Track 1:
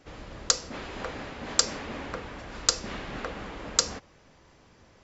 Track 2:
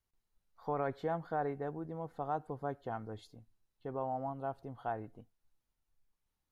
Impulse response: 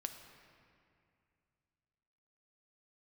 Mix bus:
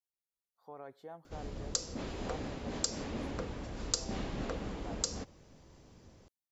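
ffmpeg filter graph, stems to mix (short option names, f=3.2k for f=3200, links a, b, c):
-filter_complex "[0:a]adelay=1250,volume=-2.5dB[a];[1:a]highpass=f=920:p=1,volume=-6.5dB[b];[a][b]amix=inputs=2:normalize=0,equalizer=f=1.7k:t=o:w=2.8:g=-11.5,dynaudnorm=f=230:g=5:m=5dB,alimiter=limit=-14dB:level=0:latency=1:release=187"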